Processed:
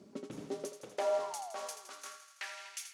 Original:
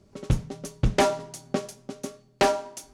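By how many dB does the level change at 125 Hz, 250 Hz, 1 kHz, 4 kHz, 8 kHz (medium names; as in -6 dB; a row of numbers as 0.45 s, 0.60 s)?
under -25 dB, -17.0 dB, -12.5 dB, -12.5 dB, -7.5 dB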